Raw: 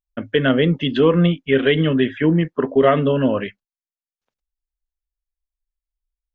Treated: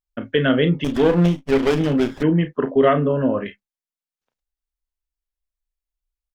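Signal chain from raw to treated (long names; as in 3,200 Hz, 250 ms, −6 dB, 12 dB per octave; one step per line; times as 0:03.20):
0:02.93–0:03.46: Chebyshev low-pass filter 1,300 Hz, order 2
ambience of single reflections 34 ms −10 dB, 48 ms −18 dB
0:00.84–0:02.23: windowed peak hold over 17 samples
level −1.5 dB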